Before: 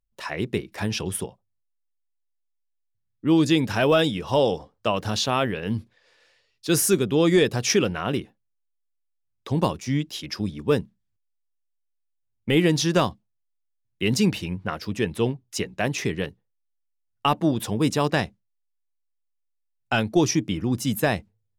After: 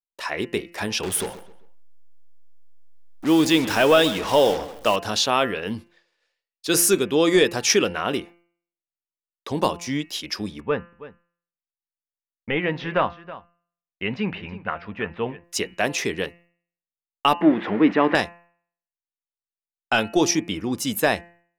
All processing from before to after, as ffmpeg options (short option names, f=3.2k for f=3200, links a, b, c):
-filter_complex "[0:a]asettb=1/sr,asplit=3[a][b][c];[a]atrim=end=1.034[d];[b]atrim=start=1.03:end=4.96,asetpts=PTS-STARTPTS,afade=t=in:d=0.004:c=qsin,afade=t=out:st=3.926:d=0.004:c=qsin,aeval=exprs='val(0)+0.5*0.0237*sgn(val(0))':c=same,acrusher=bits=5:mix=0:aa=0.5,asplit=2[e][f];[f]adelay=131,lowpass=f=4.6k:p=1,volume=-15.5dB,asplit=2[g][h];[h]adelay=131,lowpass=f=4.6k:p=1,volume=0.37,asplit=2[i][j];[j]adelay=131,lowpass=f=4.6k:p=1,volume=0.37[k];[e][g][i][k]amix=inputs=4:normalize=0,atrim=end_sample=173313[l];[c]atrim=start=4.956[m];[d][l]acrossfade=d=0.004:c1=hsin:c2=qsin[n];[n][m]acrossfade=d=0.004:c1=qsin:c2=hsin,asettb=1/sr,asplit=3[o][p][q];[o]atrim=end=10.604[r];[p]atrim=start=10.6:end=15.44,asetpts=PTS-STARTPTS,afade=t=in:d=0.004:c=qsin,afade=t=out:st=4.836:d=0.004:c=qsin,lowpass=f=2.4k:w=0.5412,lowpass=f=2.4k:w=1.3066,equalizer=f=340:w=1.7:g=-9,aecho=1:1:323:0.15,atrim=end_sample=213444[s];[q]atrim=start=15.436[t];[r][s]acrossfade=d=0.004:c1=hsin:c2=qsin[u];[u][t]acrossfade=d=0.004:c1=qsin:c2=hsin,asettb=1/sr,asplit=3[v][w][x];[v]atrim=end=17.414[y];[w]atrim=start=17.41:end=18.15,asetpts=PTS-STARTPTS,afade=t=in:d=0.004:c=qsin,afade=t=out:st=0.736:d=0.004:c=qsin,aeval=exprs='val(0)+0.5*0.0335*sgn(val(0))':c=same,highpass=120,equalizer=f=130:t=q:w=4:g=-8,equalizer=f=190:t=q:w=4:g=5,equalizer=f=300:t=q:w=4:g=6,equalizer=f=1.9k:t=q:w=4:g=7,lowpass=f=2.5k:w=0.5412,lowpass=f=2.5k:w=1.3066[z];[x]atrim=start=18.146[aa];[y][z]acrossfade=d=0.004:c1=hsin:c2=qsin[ab];[ab][aa]acrossfade=d=0.004:c1=qsin:c2=hsin,agate=range=-33dB:threshold=-49dB:ratio=3:detection=peak,equalizer=f=120:t=o:w=1.7:g=-13,bandreject=f=171.9:t=h:w=4,bandreject=f=343.8:t=h:w=4,bandreject=f=515.7:t=h:w=4,bandreject=f=687.6:t=h:w=4,bandreject=f=859.5:t=h:w=4,bandreject=f=1.0314k:t=h:w=4,bandreject=f=1.2033k:t=h:w=4,bandreject=f=1.3752k:t=h:w=4,bandreject=f=1.5471k:t=h:w=4,bandreject=f=1.719k:t=h:w=4,bandreject=f=1.8909k:t=h:w=4,bandreject=f=2.0628k:t=h:w=4,bandreject=f=2.2347k:t=h:w=4,bandreject=f=2.4066k:t=h:w=4,bandreject=f=2.5785k:t=h:w=4,bandreject=f=2.7504k:t=h:w=4,bandreject=f=2.9223k:t=h:w=4,volume=4dB"